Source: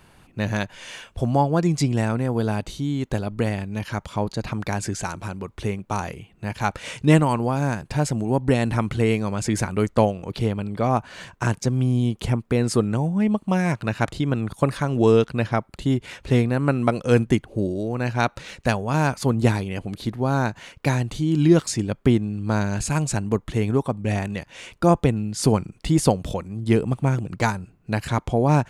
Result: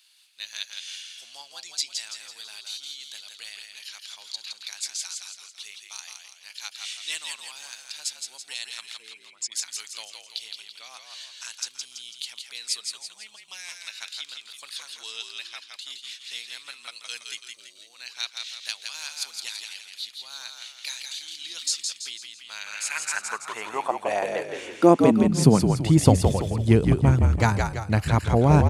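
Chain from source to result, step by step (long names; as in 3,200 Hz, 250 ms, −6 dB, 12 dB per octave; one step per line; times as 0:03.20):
0:08.97–0:09.52: spectral envelope exaggerated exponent 2
echo with shifted repeats 166 ms, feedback 46%, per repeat −54 Hz, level −4.5 dB
high-pass filter sweep 3,900 Hz → 79 Hz, 0:22.29–0:26.18
level −1 dB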